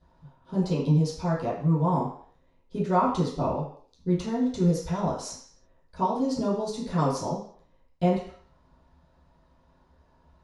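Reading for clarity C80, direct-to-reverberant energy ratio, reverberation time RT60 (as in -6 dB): 8.5 dB, -11.0 dB, 0.55 s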